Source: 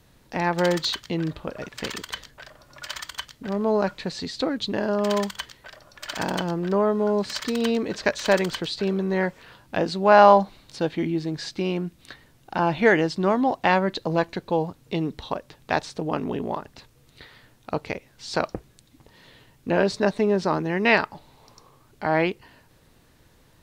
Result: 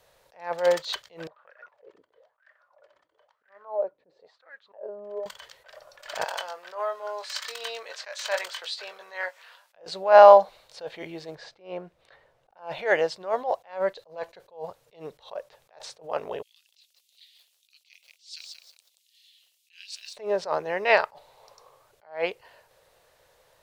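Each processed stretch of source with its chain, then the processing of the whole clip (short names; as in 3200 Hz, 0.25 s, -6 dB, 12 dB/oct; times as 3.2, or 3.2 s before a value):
1.27–5.26 bell 98 Hz +5.5 dB 1.7 oct + wah 1 Hz 270–1800 Hz, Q 5.6
6.24–9.75 HPF 1100 Hz + doubler 22 ms -9 dB
11.35–12.57 LPF 3200 Hz 6 dB/oct + high shelf 2100 Hz -7.5 dB
16.42–20.17 steep high-pass 2800 Hz + lo-fi delay 0.18 s, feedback 35%, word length 9-bit, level -5.5 dB
whole clip: resonant low shelf 380 Hz -12 dB, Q 3; attack slew limiter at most 180 dB/s; gain -2.5 dB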